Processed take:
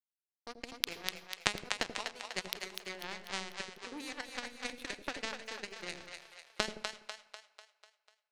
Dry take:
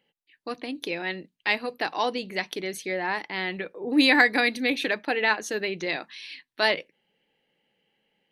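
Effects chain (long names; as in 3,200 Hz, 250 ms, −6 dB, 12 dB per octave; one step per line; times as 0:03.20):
parametric band 150 Hz −12 dB 1.1 octaves
downward compressor 16 to 1, threshold −31 dBFS, peak gain reduction 18.5 dB
power curve on the samples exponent 3
echo with a time of its own for lows and highs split 530 Hz, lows 83 ms, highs 247 ms, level −5 dB
on a send at −18 dB: convolution reverb RT60 0.80 s, pre-delay 74 ms
on the sum: level +14 dB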